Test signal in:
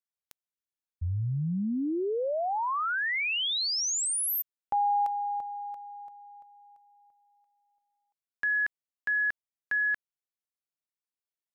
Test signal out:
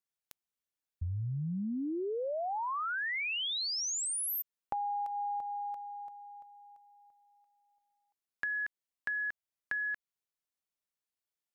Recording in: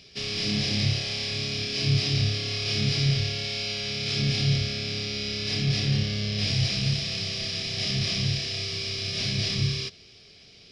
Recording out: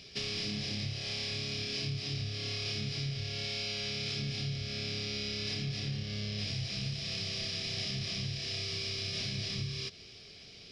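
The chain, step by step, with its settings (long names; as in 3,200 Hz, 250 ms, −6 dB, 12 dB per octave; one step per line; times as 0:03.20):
downward compressor 10 to 1, threshold −33 dBFS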